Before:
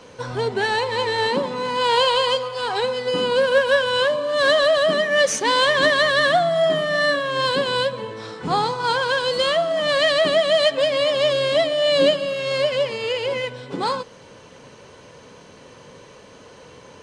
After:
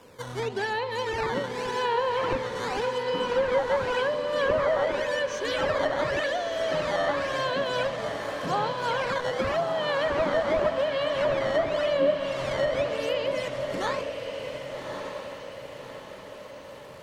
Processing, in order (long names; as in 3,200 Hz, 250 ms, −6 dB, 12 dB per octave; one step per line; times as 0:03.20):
0:04.85–0:06.72: phaser with its sweep stopped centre 400 Hz, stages 4
sample-and-hold swept by an LFO 10×, swing 160% 0.89 Hz
treble cut that deepens with the level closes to 1,300 Hz, closed at −13 dBFS
on a send: feedback delay with all-pass diffusion 1,165 ms, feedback 50%, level −6 dB
on the sum: level −7 dB